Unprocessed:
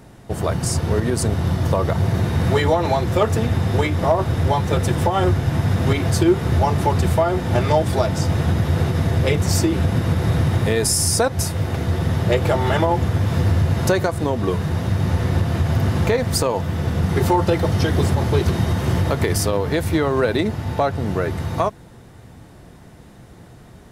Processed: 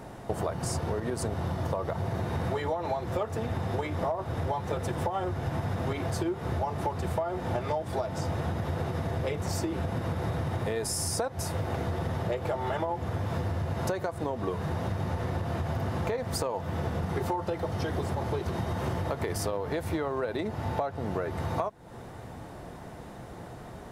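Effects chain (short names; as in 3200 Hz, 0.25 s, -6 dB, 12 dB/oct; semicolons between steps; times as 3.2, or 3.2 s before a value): bell 760 Hz +8.5 dB 2.1 oct; compressor 10:1, threshold -25 dBFS, peak gain reduction 20.5 dB; gain -2.5 dB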